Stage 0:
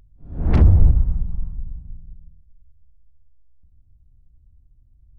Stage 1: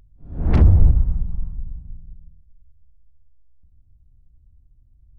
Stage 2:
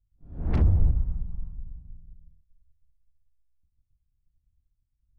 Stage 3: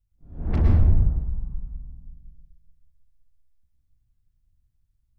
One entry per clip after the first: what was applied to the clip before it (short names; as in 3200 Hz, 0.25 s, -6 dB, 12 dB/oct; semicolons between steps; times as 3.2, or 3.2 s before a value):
nothing audible
expander -42 dBFS; gain -8.5 dB
plate-style reverb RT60 0.93 s, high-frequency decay 0.7×, pre-delay 95 ms, DRR -1 dB